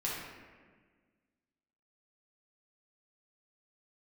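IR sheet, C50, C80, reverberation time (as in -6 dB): -0.5 dB, 2.5 dB, 1.5 s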